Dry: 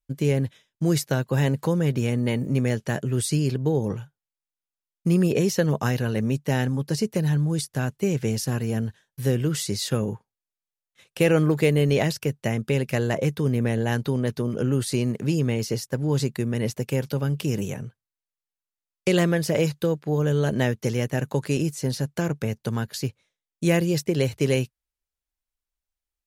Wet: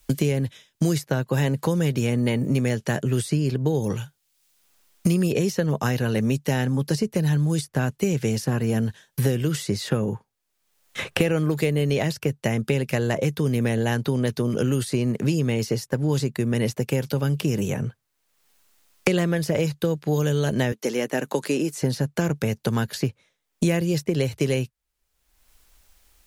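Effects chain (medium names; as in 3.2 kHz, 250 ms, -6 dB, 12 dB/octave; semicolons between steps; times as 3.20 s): 20.72–21.81 s: high-pass 240 Hz 24 dB/octave; three bands compressed up and down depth 100%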